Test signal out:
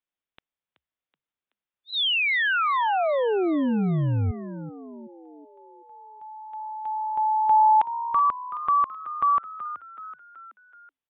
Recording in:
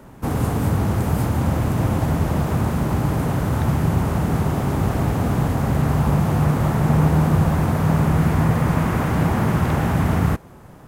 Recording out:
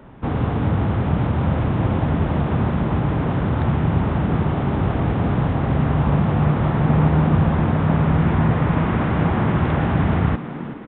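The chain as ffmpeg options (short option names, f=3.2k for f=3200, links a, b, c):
-filter_complex "[0:a]asplit=6[a][b][c][d][e][f];[b]adelay=377,afreqshift=66,volume=-13dB[g];[c]adelay=754,afreqshift=132,volume=-18.8dB[h];[d]adelay=1131,afreqshift=198,volume=-24.7dB[i];[e]adelay=1508,afreqshift=264,volume=-30.5dB[j];[f]adelay=1885,afreqshift=330,volume=-36.4dB[k];[a][g][h][i][j][k]amix=inputs=6:normalize=0,aresample=8000,aresample=44100"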